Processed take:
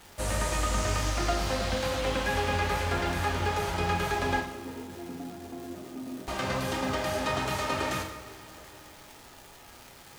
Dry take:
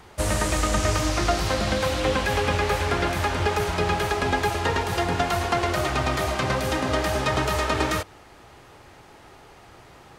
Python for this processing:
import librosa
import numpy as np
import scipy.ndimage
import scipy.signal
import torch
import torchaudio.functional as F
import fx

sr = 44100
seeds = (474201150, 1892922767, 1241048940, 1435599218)

y = fx.bandpass_q(x, sr, hz=270.0, q=3.1, at=(4.4, 6.28))
y = fx.dmg_crackle(y, sr, seeds[0], per_s=500.0, level_db=-32.0)
y = fx.rev_double_slope(y, sr, seeds[1], early_s=0.6, late_s=4.1, knee_db=-18, drr_db=0.5)
y = y * 10.0 ** (-8.0 / 20.0)